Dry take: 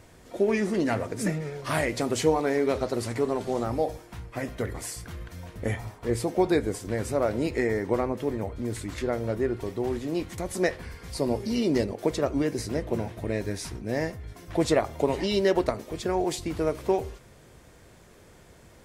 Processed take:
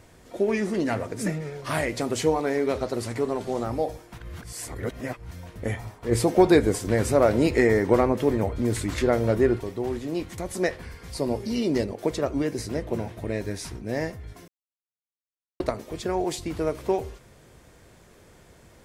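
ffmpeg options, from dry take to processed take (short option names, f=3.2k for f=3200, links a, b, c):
-filter_complex "[0:a]asplit=3[a][b][c];[a]afade=t=out:st=6.11:d=0.02[d];[b]acontrast=66,afade=t=in:st=6.11:d=0.02,afade=t=out:st=9.58:d=0.02[e];[c]afade=t=in:st=9.58:d=0.02[f];[d][e][f]amix=inputs=3:normalize=0,asplit=5[g][h][i][j][k];[g]atrim=end=4.182[l];[h]atrim=start=4.178:end=5.312,asetpts=PTS-STARTPTS,areverse[m];[i]atrim=start=5.308:end=14.48,asetpts=PTS-STARTPTS,afade=t=out:st=9.168:d=0.004:c=hsin[n];[j]atrim=start=14.48:end=15.6,asetpts=PTS-STARTPTS,volume=0[o];[k]atrim=start=15.6,asetpts=PTS-STARTPTS,afade=t=in:d=0.004:c=hsin[p];[l][m]acrossfade=d=0.004:c1=hsin:c2=hsin[q];[n][o][p]concat=n=3:v=0:a=1[r];[q][r]acrossfade=d=0.004:c1=hsin:c2=hsin"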